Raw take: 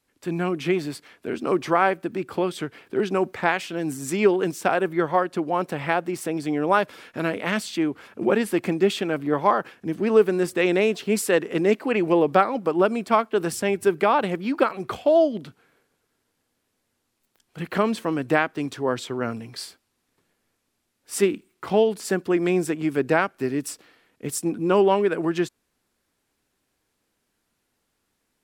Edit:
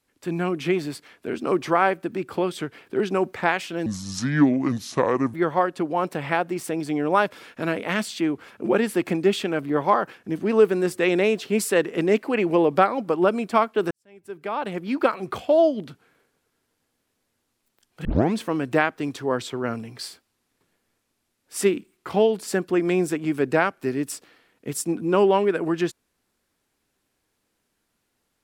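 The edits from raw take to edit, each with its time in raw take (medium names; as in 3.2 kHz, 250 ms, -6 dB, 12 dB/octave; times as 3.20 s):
3.86–4.91 s: speed 71%
13.48–14.51 s: fade in quadratic
17.62 s: tape start 0.29 s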